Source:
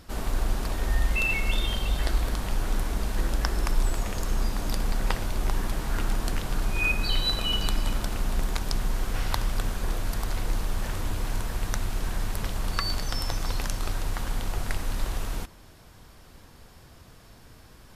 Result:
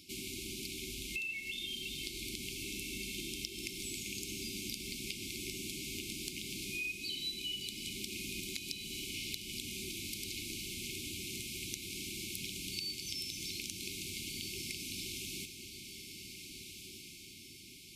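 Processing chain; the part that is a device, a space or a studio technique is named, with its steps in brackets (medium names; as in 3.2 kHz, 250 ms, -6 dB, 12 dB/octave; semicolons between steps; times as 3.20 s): frequency weighting A; FFT band-reject 400–2100 Hz; ASMR close-microphone chain (bass shelf 160 Hz +5.5 dB; compression 6:1, threshold -39 dBFS, peak gain reduction 16 dB; treble shelf 8.9 kHz +4.5 dB); echo that smears into a reverb 1643 ms, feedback 47%, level -7.5 dB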